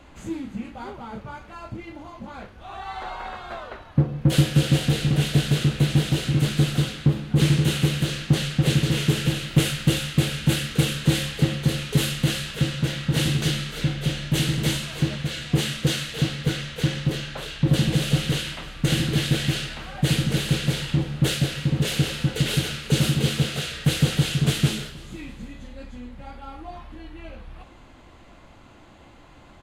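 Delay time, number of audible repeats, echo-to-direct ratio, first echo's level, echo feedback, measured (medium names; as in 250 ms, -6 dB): 317 ms, 3, -20.0 dB, -21.0 dB, 48%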